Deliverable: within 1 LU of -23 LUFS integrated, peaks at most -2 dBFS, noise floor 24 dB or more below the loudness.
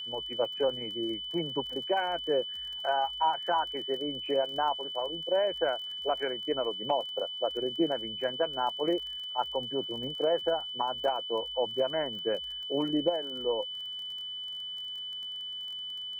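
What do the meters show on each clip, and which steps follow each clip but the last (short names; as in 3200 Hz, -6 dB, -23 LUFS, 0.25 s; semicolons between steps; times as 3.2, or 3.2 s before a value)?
ticks 26/s; steady tone 3000 Hz; tone level -36 dBFS; loudness -31.5 LUFS; peak -15.5 dBFS; loudness target -23.0 LUFS
-> de-click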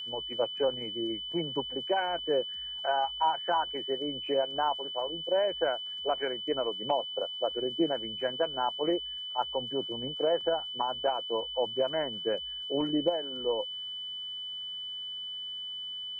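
ticks 0.062/s; steady tone 3000 Hz; tone level -36 dBFS
-> notch 3000 Hz, Q 30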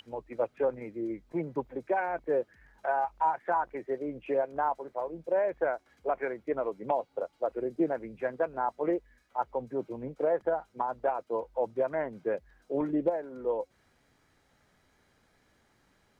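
steady tone none; loudness -32.5 LUFS; peak -16.5 dBFS; loudness target -23.0 LUFS
-> gain +9.5 dB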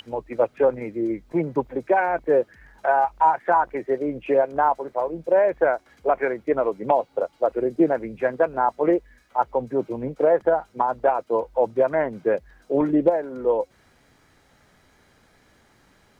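loudness -23.0 LUFS; peak -7.0 dBFS; noise floor -59 dBFS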